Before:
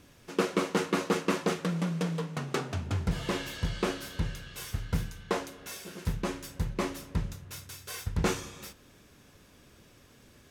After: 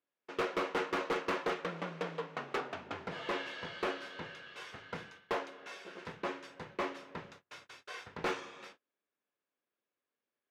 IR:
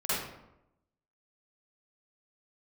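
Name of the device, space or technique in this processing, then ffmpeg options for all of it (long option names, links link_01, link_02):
walkie-talkie: -af "highpass=430,lowpass=2800,asoftclip=type=hard:threshold=-28dB,agate=range=-30dB:threshold=-55dB:ratio=16:detection=peak"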